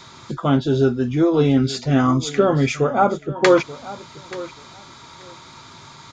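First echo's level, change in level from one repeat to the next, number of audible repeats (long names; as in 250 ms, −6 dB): −17.0 dB, −15.0 dB, 2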